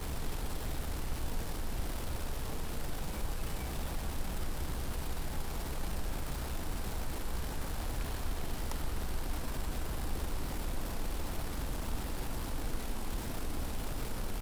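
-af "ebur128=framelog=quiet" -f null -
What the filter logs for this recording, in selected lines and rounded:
Integrated loudness:
  I:         -40.0 LUFS
  Threshold: -50.0 LUFS
Loudness range:
  LRA:         0.5 LU
  Threshold: -59.9 LUFS
  LRA low:   -40.1 LUFS
  LRA high:  -39.6 LUFS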